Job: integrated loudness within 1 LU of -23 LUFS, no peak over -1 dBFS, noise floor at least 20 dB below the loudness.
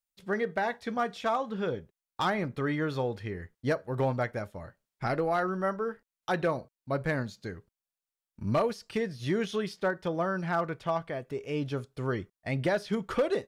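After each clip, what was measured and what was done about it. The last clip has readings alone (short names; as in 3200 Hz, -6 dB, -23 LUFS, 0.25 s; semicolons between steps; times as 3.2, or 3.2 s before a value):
clipped 0.4%; flat tops at -20.0 dBFS; loudness -32.0 LUFS; peak -20.0 dBFS; loudness target -23.0 LUFS
-> clip repair -20 dBFS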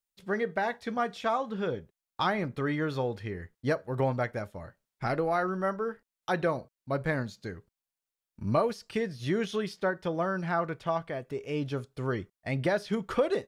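clipped 0.0%; loudness -31.5 LUFS; peak -13.5 dBFS; loudness target -23.0 LUFS
-> gain +8.5 dB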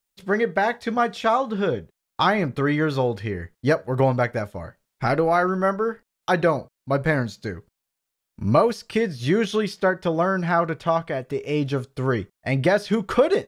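loudness -23.0 LUFS; peak -5.0 dBFS; noise floor -82 dBFS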